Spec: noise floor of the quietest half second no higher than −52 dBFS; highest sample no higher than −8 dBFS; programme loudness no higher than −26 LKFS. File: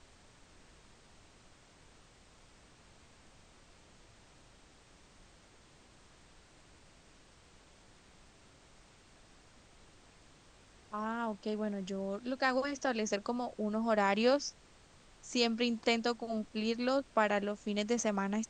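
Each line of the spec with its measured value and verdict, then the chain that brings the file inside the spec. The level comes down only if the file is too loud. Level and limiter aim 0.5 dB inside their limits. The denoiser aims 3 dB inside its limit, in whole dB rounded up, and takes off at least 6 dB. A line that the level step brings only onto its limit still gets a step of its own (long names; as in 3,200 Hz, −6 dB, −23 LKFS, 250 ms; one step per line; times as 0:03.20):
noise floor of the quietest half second −61 dBFS: in spec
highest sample −15.5 dBFS: in spec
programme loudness −34.0 LKFS: in spec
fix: no processing needed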